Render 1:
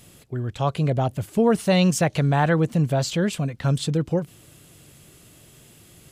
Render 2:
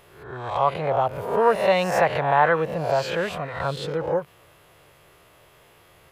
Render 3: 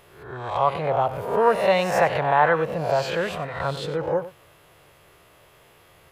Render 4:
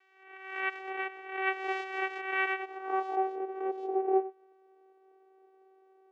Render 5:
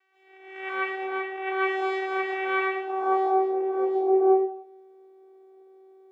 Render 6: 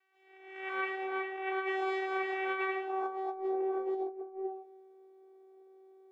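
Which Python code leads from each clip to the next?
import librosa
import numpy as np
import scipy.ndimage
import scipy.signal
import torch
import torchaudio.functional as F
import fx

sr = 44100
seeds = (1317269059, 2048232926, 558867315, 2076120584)

y1 = fx.spec_swells(x, sr, rise_s=0.7)
y1 = fx.graphic_eq(y1, sr, hz=(125, 250, 500, 1000, 2000, 8000), db=(-4, -10, 7, 11, 5, -11))
y1 = y1 * librosa.db_to_amplitude(-6.0)
y2 = y1 + 10.0 ** (-15.0 / 20.0) * np.pad(y1, (int(96 * sr / 1000.0), 0))[:len(y1)]
y3 = fx.vocoder(y2, sr, bands=4, carrier='saw', carrier_hz=382.0)
y3 = fx.filter_sweep_bandpass(y3, sr, from_hz=2100.0, to_hz=550.0, start_s=2.66, end_s=3.34, q=2.0)
y3 = y3 * librosa.db_to_amplitude(1.5)
y4 = fx.rev_plate(y3, sr, seeds[0], rt60_s=0.61, hf_ratio=0.9, predelay_ms=115, drr_db=-8.5)
y4 = fx.dynamic_eq(y4, sr, hz=1100.0, q=1.3, threshold_db=-39.0, ratio=4.0, max_db=5)
y4 = y4 * librosa.db_to_amplitude(-4.0)
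y5 = fx.over_compress(y4, sr, threshold_db=-26.0, ratio=-0.5)
y5 = y5 * librosa.db_to_amplitude(-7.5)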